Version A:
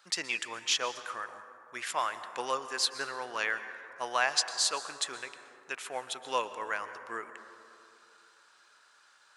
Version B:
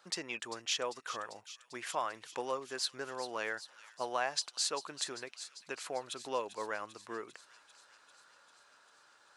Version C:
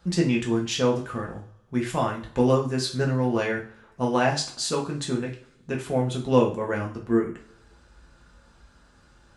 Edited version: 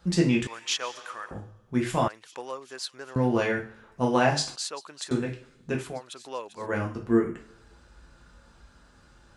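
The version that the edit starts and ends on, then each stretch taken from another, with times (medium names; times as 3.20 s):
C
0.47–1.31 s: from A
2.08–3.16 s: from B
4.56–5.11 s: from B
5.89–6.65 s: from B, crossfade 0.24 s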